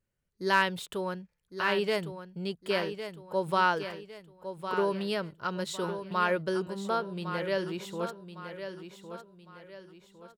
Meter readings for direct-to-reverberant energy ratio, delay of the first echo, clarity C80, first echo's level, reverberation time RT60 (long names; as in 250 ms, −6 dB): no reverb audible, 1,107 ms, no reverb audible, −9.5 dB, no reverb audible